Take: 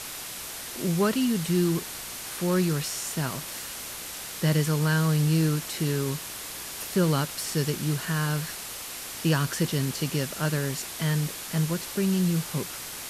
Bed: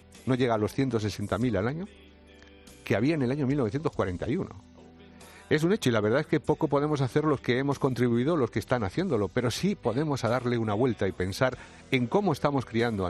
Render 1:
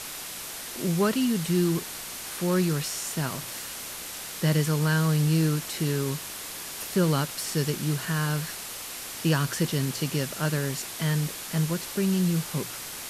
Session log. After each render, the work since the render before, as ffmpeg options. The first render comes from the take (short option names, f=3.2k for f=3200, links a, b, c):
-af "bandreject=f=60:t=h:w=4,bandreject=f=120:t=h:w=4"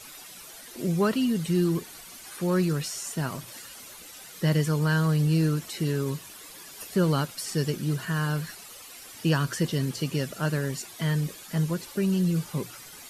-af "afftdn=nr=12:nf=-38"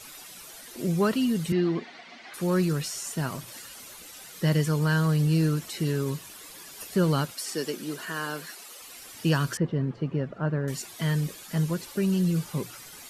-filter_complex "[0:a]asettb=1/sr,asplit=3[a][b][c];[a]atrim=end=1.524[d];[b]atrim=start=1.52:end=2.34,asetpts=PTS-STARTPTS,afade=t=in:d=0.004:c=qsin,afade=t=out:st=0.816:d=0.004:c=qsin,highpass=210,equalizer=f=240:t=q:w=4:g=8,equalizer=f=700:t=q:w=4:g=9,equalizer=f=2k:t=q:w=4:g=9,lowpass=f=4.4k:w=0.5412,lowpass=f=4.4k:w=1.3066[e];[c]atrim=start=2.336[f];[d][e]acrossfade=d=0.004:c1=hsin:c2=qsin[g];[g][f]acrossfade=d=0.004:c1=qsin:c2=hsin,asettb=1/sr,asplit=3[h][i][j];[h]atrim=end=7.344[k];[i]atrim=start=7.34:end=8.82,asetpts=PTS-STARTPTS,afade=t=in:d=0.004:c=qsin,afade=t=out:st=1.476:d=0.004:c=qsin,highpass=f=240:w=0.5412,highpass=f=240:w=1.3066[l];[j]atrim=start=8.816[m];[k][l]acrossfade=d=0.004:c1=hsin:c2=qsin[n];[n][m]acrossfade=d=0.004:c1=qsin:c2=hsin,asettb=1/sr,asplit=3[o][p][q];[o]atrim=end=9.574[r];[p]atrim=start=9.57:end=10.68,asetpts=PTS-STARTPTS,afade=t=in:d=0.004:c=qsin,afade=t=out:st=1.106:d=0.004:c=qsin,lowpass=1.3k[s];[q]atrim=start=10.676[t];[r][s]acrossfade=d=0.004:c1=hsin:c2=qsin[u];[u][t]acrossfade=d=0.004:c1=qsin:c2=hsin"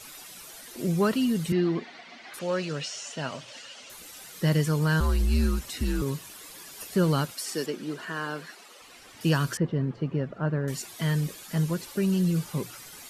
-filter_complex "[0:a]asettb=1/sr,asplit=3[a][b][c];[a]atrim=end=2.394[d];[b]atrim=start=2.39:end=3.9,asetpts=PTS-STARTPTS,afade=t=in:d=0.004:c=qsin,afade=t=out:st=1.506:d=0.004:c=qsin,highpass=170,equalizer=f=180:t=q:w=4:g=-8,equalizer=f=350:t=q:w=4:g=-8,equalizer=f=580:t=q:w=4:g=6,equalizer=f=1.1k:t=q:w=4:g=-3,equalizer=f=2.9k:t=q:w=4:g=7,lowpass=f=6.7k:w=0.5412,lowpass=f=6.7k:w=1.3066[e];[c]atrim=start=3.896[f];[d][e]acrossfade=d=0.004:c1=hsin:c2=qsin[g];[g][f]acrossfade=d=0.004:c1=qsin:c2=hsin,asettb=1/sr,asplit=3[h][i][j];[h]atrim=end=5.004[k];[i]atrim=start=5:end=6.02,asetpts=PTS-STARTPTS,afade=t=in:d=0.004:c=qsin,afade=t=out:st=1.016:d=0.004:c=qsin,afreqshift=-94[l];[j]atrim=start=6.016[m];[k][l]acrossfade=d=0.004:c1=hsin:c2=qsin[n];[n][m]acrossfade=d=0.004:c1=qsin:c2=hsin,asettb=1/sr,asplit=3[o][p][q];[o]atrim=end=7.664[r];[p]atrim=start=7.66:end=9.21,asetpts=PTS-STARTPTS,afade=t=in:d=0.004:c=qsin,afade=t=out:st=1.546:d=0.004:c=qsin,aemphasis=mode=reproduction:type=50fm[s];[q]atrim=start=9.206[t];[r][s]acrossfade=d=0.004:c1=hsin:c2=qsin[u];[u][t]acrossfade=d=0.004:c1=qsin:c2=hsin"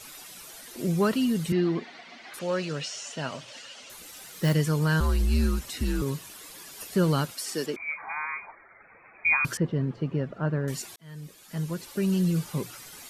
-filter_complex "[0:a]asettb=1/sr,asplit=3[a][b][c];[a]atrim=end=4.074[d];[b]atrim=start=4.07:end=4.53,asetpts=PTS-STARTPTS,afade=t=in:d=0.004:c=qsin,afade=t=out:st=0.456:d=0.004:c=qsin,acrusher=bits=5:mode=log:mix=0:aa=0.000001[e];[c]atrim=start=4.526[f];[d][e]acrossfade=d=0.004:c1=hsin:c2=qsin[g];[g][f]acrossfade=d=0.004:c1=qsin:c2=hsin,asettb=1/sr,asplit=3[h][i][j];[h]atrim=end=7.764[k];[i]atrim=start=7.76:end=9.45,asetpts=PTS-STARTPTS,afade=t=in:d=0.004:c=qsin,afade=t=out:st=1.686:d=0.004:c=qsin,lowpass=f=2.2k:t=q:w=0.5098,lowpass=f=2.2k:t=q:w=0.6013,lowpass=f=2.2k:t=q:w=0.9,lowpass=f=2.2k:t=q:w=2.563,afreqshift=-2600[l];[j]atrim=start=9.446[m];[k][l]acrossfade=d=0.004:c1=hsin:c2=qsin[n];[n][m]acrossfade=d=0.004:c1=qsin:c2=hsin,asplit=2[o][p];[o]atrim=end=10.96,asetpts=PTS-STARTPTS,afade=t=out:st=10.956:d=0.004:c=hsin[q];[p]atrim=start=10.96,asetpts=PTS-STARTPTS,afade=t=in:d=1.17[r];[q][r]concat=n=2:v=0:a=1"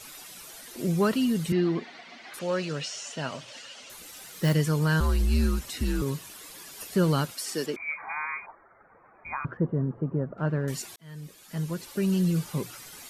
-filter_complex "[0:a]asettb=1/sr,asplit=3[a][b][c];[a]atrim=end=8.464[d];[b]atrim=start=8.46:end=10.38,asetpts=PTS-STARTPTS,afade=t=in:d=0.004:c=qsin,afade=t=out:st=1.916:d=0.004:c=qsin,lowpass=f=1.4k:w=0.5412,lowpass=f=1.4k:w=1.3066[e];[c]atrim=start=10.376[f];[d][e]acrossfade=d=0.004:c1=hsin:c2=qsin[g];[g][f]acrossfade=d=0.004:c1=qsin:c2=hsin"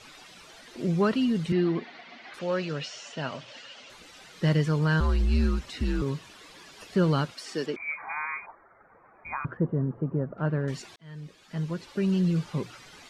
-af "lowpass=4.4k"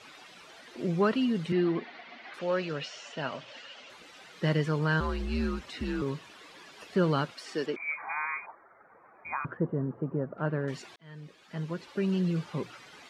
-af "highpass=f=160:p=1,bass=f=250:g=-2,treble=f=4k:g=-6"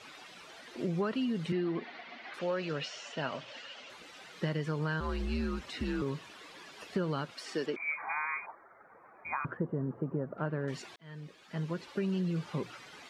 -af "acompressor=threshold=-29dB:ratio=6"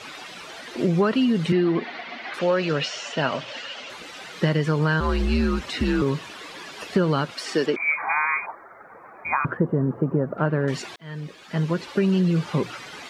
-af "volume=12dB"